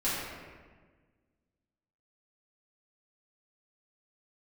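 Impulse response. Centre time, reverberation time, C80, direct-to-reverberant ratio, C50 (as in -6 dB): 106 ms, 1.5 s, 0.5 dB, -11.5 dB, -1.5 dB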